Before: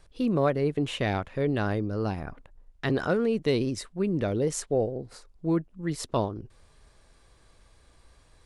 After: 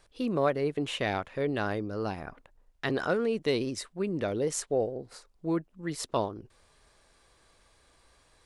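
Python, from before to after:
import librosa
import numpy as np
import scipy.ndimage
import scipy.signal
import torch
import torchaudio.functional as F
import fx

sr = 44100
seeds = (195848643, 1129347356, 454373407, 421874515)

y = fx.low_shelf(x, sr, hz=230.0, db=-10.0)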